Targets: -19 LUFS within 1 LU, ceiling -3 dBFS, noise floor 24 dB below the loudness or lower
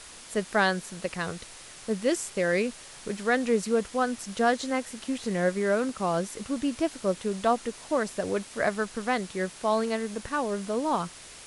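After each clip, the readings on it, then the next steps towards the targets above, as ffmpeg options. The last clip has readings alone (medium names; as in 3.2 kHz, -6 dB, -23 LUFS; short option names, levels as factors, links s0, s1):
noise floor -47 dBFS; noise floor target -53 dBFS; loudness -28.5 LUFS; peak level -10.5 dBFS; loudness target -19.0 LUFS
-> -af "afftdn=nr=6:nf=-47"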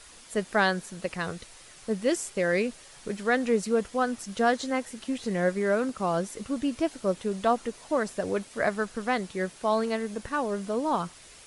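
noise floor -51 dBFS; noise floor target -53 dBFS
-> -af "afftdn=nr=6:nf=-51"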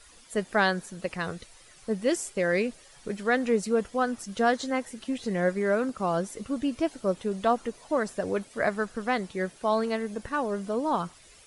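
noise floor -54 dBFS; loudness -28.5 LUFS; peak level -10.5 dBFS; loudness target -19.0 LUFS
-> -af "volume=2.99,alimiter=limit=0.708:level=0:latency=1"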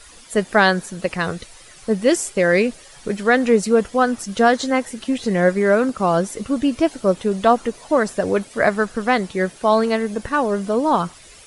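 loudness -19.5 LUFS; peak level -3.0 dBFS; noise floor -44 dBFS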